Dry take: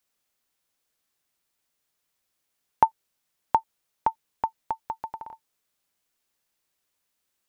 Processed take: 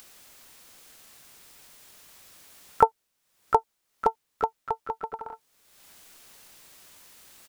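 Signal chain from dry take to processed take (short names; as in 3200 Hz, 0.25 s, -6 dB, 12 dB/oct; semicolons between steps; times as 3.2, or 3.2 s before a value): upward compressor, threshold -33 dBFS; harmoniser -12 st -7 dB, -4 st -17 dB, +7 st -9 dB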